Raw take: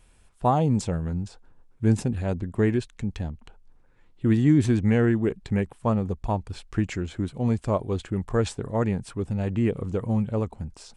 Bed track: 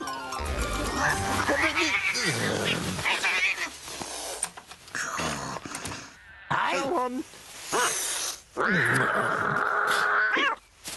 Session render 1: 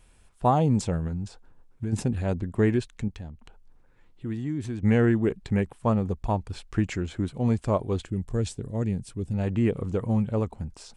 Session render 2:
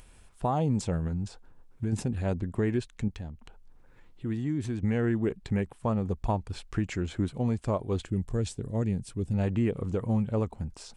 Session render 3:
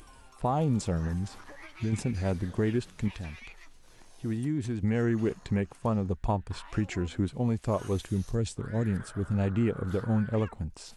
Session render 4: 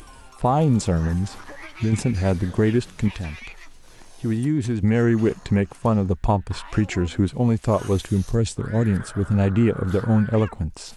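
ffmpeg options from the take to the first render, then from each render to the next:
-filter_complex "[0:a]asplit=3[s0][s1][s2];[s0]afade=t=out:st=1.07:d=0.02[s3];[s1]acompressor=threshold=0.0501:ratio=6:attack=3.2:release=140:knee=1:detection=peak,afade=t=in:st=1.07:d=0.02,afade=t=out:st=1.92:d=0.02[s4];[s2]afade=t=in:st=1.92:d=0.02[s5];[s3][s4][s5]amix=inputs=3:normalize=0,asettb=1/sr,asplit=3[s6][s7][s8];[s6]atrim=end=3.084[s9];[s7]atrim=start=3.08:end=4.83,asetpts=PTS-STARTPTS,afade=t=in:d=0.004:c=qsin,afade=t=out:st=1.746:d=0.004:c=qsin,acompressor=threshold=0.00398:ratio=1.5:attack=3.2:release=140:knee=1:detection=peak[s10];[s8]atrim=start=4.826[s11];[s9][s10]acrossfade=d=0.004:c1=hsin:c2=qsin[s12];[s12][s11]acrossfade=d=0.004:c1=qsin:c2=hsin,asettb=1/sr,asplit=3[s13][s14][s15];[s13]atrim=end=8.054[s16];[s14]atrim=start=8.05:end=9.34,asetpts=PTS-STARTPTS,afade=t=in:d=0.004:c=qsin,afade=t=out:st=1.286:d=0.004:c=qsin,equalizer=f=1100:w=0.54:g=-14[s17];[s15]atrim=start=9.336[s18];[s16][s17]acrossfade=d=0.004:c1=hsin:c2=qsin[s19];[s19][s18]acrossfade=d=0.004:c1=qsin:c2=hsin"
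-af "alimiter=limit=0.126:level=0:latency=1:release=322,acompressor=mode=upward:threshold=0.00398:ratio=2.5"
-filter_complex "[1:a]volume=0.0631[s0];[0:a][s0]amix=inputs=2:normalize=0"
-af "volume=2.66"

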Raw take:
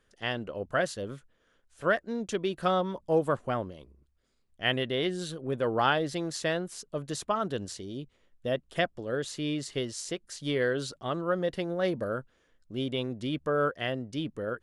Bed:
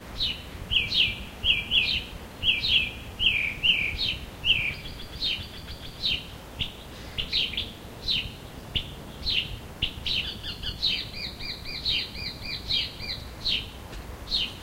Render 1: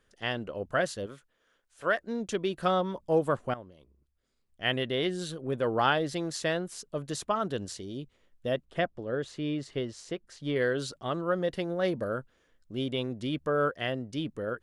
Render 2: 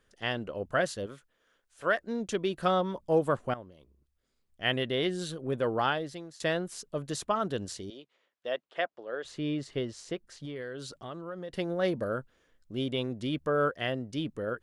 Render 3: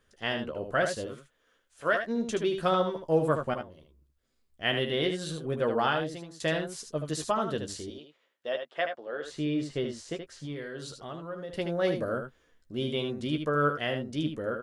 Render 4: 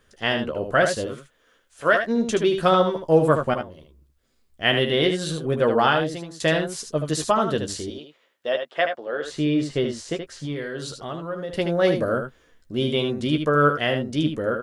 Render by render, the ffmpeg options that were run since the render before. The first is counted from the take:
-filter_complex "[0:a]asettb=1/sr,asplit=3[s0][s1][s2];[s0]atrim=end=1.064[s3];[s1]atrim=start=1.06:end=1.99,asetpts=PTS-STARTPTS,afade=t=in:d=0.004:c=qsin,afade=t=out:st=0.926:d=0.004:c=qsin,lowshelf=f=270:g=-11.5[s4];[s2]atrim=start=1.986[s5];[s3][s4]acrossfade=d=0.004:c1=hsin:c2=qsin[s6];[s6][s5]acrossfade=d=0.004:c1=qsin:c2=hsin,asettb=1/sr,asplit=3[s7][s8][s9];[s7]atrim=end=8.654[s10];[s8]atrim=start=8.65:end=10.56,asetpts=PTS-STARTPTS,afade=t=in:d=0.004:c=qsin,afade=t=out:st=1.906:d=0.004:c=qsin,lowpass=f=2000:p=1[s11];[s9]atrim=start=10.556[s12];[s10][s11]acrossfade=d=0.004:c1=hsin:c2=qsin[s13];[s13][s12]acrossfade=d=0.004:c1=qsin:c2=hsin,asplit=2[s14][s15];[s14]atrim=end=3.54,asetpts=PTS-STARTPTS,afade=t=out:st=3.536:d=0.004:c=hsin:silence=0.211349[s16];[s15]atrim=start=3.54,asetpts=PTS-STARTPTS,afade=t=in:d=1.36:silence=0.211349[s17];[s16][s17]concat=n=2:v=0:a=1"
-filter_complex "[0:a]asettb=1/sr,asplit=3[s0][s1][s2];[s0]atrim=end=7.904[s3];[s1]atrim=start=7.9:end=9.25,asetpts=PTS-STARTPTS,afade=t=in:d=0.004:c=qsin,afade=t=out:st=1.346:d=0.004:c=qsin,highpass=550,lowpass=5100[s4];[s2]atrim=start=9.246[s5];[s3][s4]acrossfade=d=0.004:c1=hsin:c2=qsin[s6];[s6][s5]acrossfade=d=0.004:c1=qsin:c2=hsin,asettb=1/sr,asplit=3[s7][s8][s9];[s7]atrim=end=10.454[s10];[s8]atrim=start=10.45:end=11.54,asetpts=PTS-STARTPTS,afade=t=in:d=0.004:c=qsin,afade=t=out:st=1.086:d=0.004:c=qsin,acompressor=threshold=0.0112:ratio=3:attack=3.2:release=140:knee=1:detection=peak[s11];[s9]atrim=start=11.536[s12];[s10][s11]acrossfade=d=0.004:c1=hsin:c2=qsin[s13];[s13][s12]acrossfade=d=0.004:c1=qsin:c2=hsin,asplit=2[s14][s15];[s14]atrim=end=6.4,asetpts=PTS-STARTPTS,afade=t=out:st=5.6:d=0.8:silence=0.105925[s16];[s15]atrim=start=6.4,asetpts=PTS-STARTPTS,afade=t=in:d=0.004:c=hsin:silence=0.105925[s17];[s16][s17]concat=n=2:v=0:a=1"
-filter_complex "[0:a]asplit=2[s0][s1];[s1]adelay=13,volume=0.398[s2];[s0][s2]amix=inputs=2:normalize=0,asplit=2[s3][s4];[s4]aecho=0:1:76:0.447[s5];[s3][s5]amix=inputs=2:normalize=0"
-af "volume=2.51"

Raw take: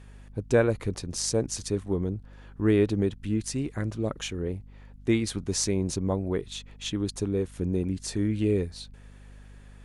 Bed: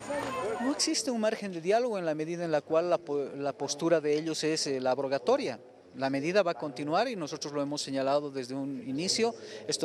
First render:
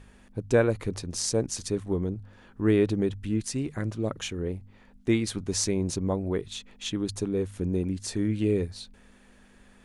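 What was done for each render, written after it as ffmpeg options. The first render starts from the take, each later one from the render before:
-af "bandreject=f=50:t=h:w=4,bandreject=f=100:t=h:w=4,bandreject=f=150:t=h:w=4"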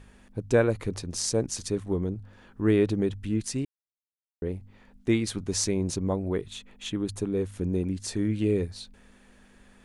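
-filter_complex "[0:a]asettb=1/sr,asplit=3[s0][s1][s2];[s0]atrim=end=6.444[s3];[s1]atrim=start=6.44:end=7.28,asetpts=PTS-STARTPTS,afade=t=in:d=0.004:c=qsin,afade=t=out:st=0.836:d=0.004:c=qsin,equalizer=f=5200:w=1.3:g=-6[s4];[s2]atrim=start=7.276[s5];[s3][s4]acrossfade=d=0.004:c1=hsin:c2=qsin[s6];[s6][s5]acrossfade=d=0.004:c1=qsin:c2=hsin,asplit=3[s7][s8][s9];[s7]atrim=end=3.65,asetpts=PTS-STARTPTS,afade=t=out:st=3.646:d=0.004:c=hsin[s10];[s8]atrim=start=3.65:end=4.42,asetpts=PTS-STARTPTS,volume=0[s11];[s9]atrim=start=4.42,asetpts=PTS-STARTPTS,afade=t=in:d=0.004:c=hsin[s12];[s10][s11][s12]concat=n=3:v=0:a=1"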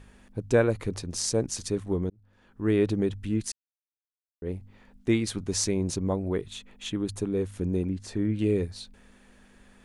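-filter_complex "[0:a]asettb=1/sr,asplit=3[s0][s1][s2];[s0]atrim=end=7.874[s3];[s1]atrim=start=7.87:end=8.39,asetpts=PTS-STARTPTS,afade=t=in:d=0.004:c=qsin,afade=t=out:st=0.516:d=0.004:c=qsin,highshelf=f=3700:g=-12[s4];[s2]atrim=start=8.386[s5];[s3][s4]acrossfade=d=0.004:c1=hsin:c2=qsin[s6];[s6][s5]acrossfade=d=0.004:c1=qsin:c2=hsin,asplit=3[s7][s8][s9];[s7]atrim=end=2.1,asetpts=PTS-STARTPTS,afade=t=out:st=2.096:d=0.004:c=hsin[s10];[s8]atrim=start=2.1:end=3.52,asetpts=PTS-STARTPTS,afade=t=in:d=0.78,afade=t=out:st=1.416:d=0.004:c=hsin[s11];[s9]atrim=start=3.52,asetpts=PTS-STARTPTS,afade=t=in:d=0.97:c=exp[s12];[s10][s11][s12]concat=n=3:v=0:a=1"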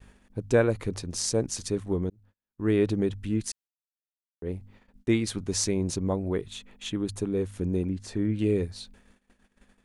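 -af "agate=range=0.0141:threshold=0.00224:ratio=16:detection=peak"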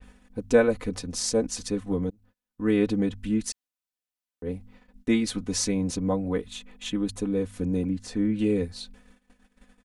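-af "aecho=1:1:4:0.79,adynamicequalizer=threshold=0.00562:dfrequency=4700:dqfactor=0.7:tfrequency=4700:tqfactor=0.7:attack=5:release=100:ratio=0.375:range=2:mode=cutabove:tftype=highshelf"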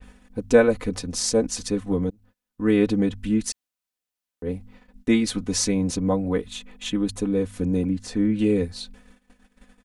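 -af "volume=1.5"

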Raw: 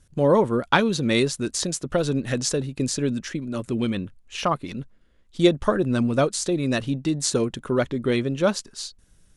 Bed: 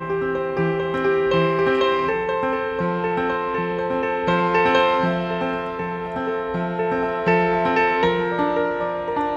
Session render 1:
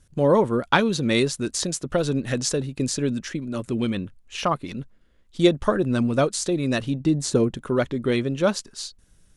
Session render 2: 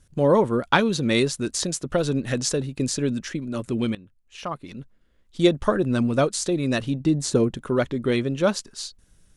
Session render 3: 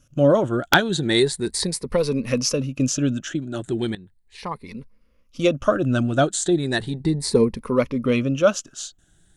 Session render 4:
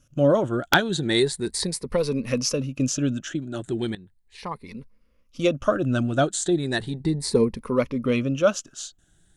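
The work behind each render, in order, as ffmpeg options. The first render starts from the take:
-filter_complex "[0:a]asettb=1/sr,asplit=3[s0][s1][s2];[s0]atrim=end=7.004[s3];[s1]atrim=start=7:end=7.57,asetpts=PTS-STARTPTS,afade=t=in:d=0.004:c=qsin,afade=t=out:st=0.566:d=0.004:c=qsin,tiltshelf=f=830:g=4.5[s4];[s2]atrim=start=7.566[s5];[s3][s4]acrossfade=d=0.004:c1=hsin:c2=qsin[s6];[s6][s5]acrossfade=d=0.004:c1=qsin:c2=hsin"
-filter_complex "[0:a]asplit=2[s0][s1];[s0]atrim=end=3.95,asetpts=PTS-STARTPTS,afade=t=out:st=3.946:d=0.004:c=hsin:silence=0.112202[s2];[s1]atrim=start=3.95,asetpts=PTS-STARTPTS,afade=t=in:d=1.64:silence=0.112202[s3];[s2][s3]concat=n=2:v=0:a=1"
-af "afftfilt=real='re*pow(10,12/40*sin(2*PI*(0.89*log(max(b,1)*sr/1024/100)/log(2)-(0.36)*(pts-256)/sr)))':imag='im*pow(10,12/40*sin(2*PI*(0.89*log(max(b,1)*sr/1024/100)/log(2)-(0.36)*(pts-256)/sr)))':win_size=1024:overlap=0.75,aeval=exprs='(mod(1.12*val(0)+1,2)-1)/1.12':c=same"
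-af "volume=0.75"

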